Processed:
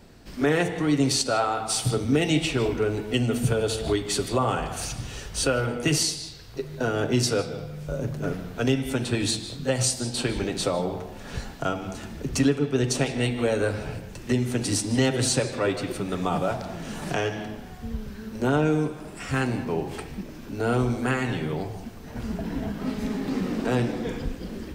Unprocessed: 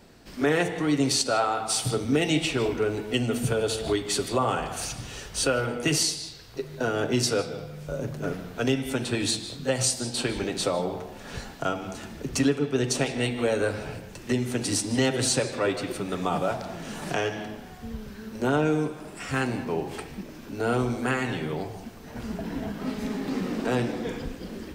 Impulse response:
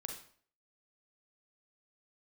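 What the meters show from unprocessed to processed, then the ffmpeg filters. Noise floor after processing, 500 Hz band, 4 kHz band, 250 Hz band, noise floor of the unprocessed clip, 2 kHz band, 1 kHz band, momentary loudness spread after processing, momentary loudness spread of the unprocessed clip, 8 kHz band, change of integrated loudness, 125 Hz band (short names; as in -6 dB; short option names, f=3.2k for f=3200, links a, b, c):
-41 dBFS, +0.5 dB, 0.0 dB, +2.0 dB, -43 dBFS, 0.0 dB, 0.0 dB, 13 LU, 14 LU, 0.0 dB, +1.0 dB, +4.0 dB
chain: -af "lowshelf=f=150:g=7"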